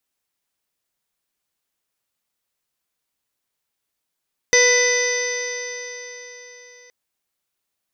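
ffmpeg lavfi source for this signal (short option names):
-f lavfi -i "aevalsrc='0.168*pow(10,-3*t/4.01)*sin(2*PI*489.54*t)+0.0316*pow(10,-3*t/4.01)*sin(2*PI*982.29*t)+0.0251*pow(10,-3*t/4.01)*sin(2*PI*1481.45*t)+0.2*pow(10,-3*t/4.01)*sin(2*PI*1990.13*t)+0.0335*pow(10,-3*t/4.01)*sin(2*PI*2511.34*t)+0.0188*pow(10,-3*t/4.01)*sin(2*PI*3047.97*t)+0.0473*pow(10,-3*t/4.01)*sin(2*PI*3602.78*t)+0.02*pow(10,-3*t/4.01)*sin(2*PI*4178.34*t)+0.0668*pow(10,-3*t/4.01)*sin(2*PI*4777.06*t)+0.0376*pow(10,-3*t/4.01)*sin(2*PI*5401.18*t)+0.15*pow(10,-3*t/4.01)*sin(2*PI*6052.75*t)':d=2.37:s=44100"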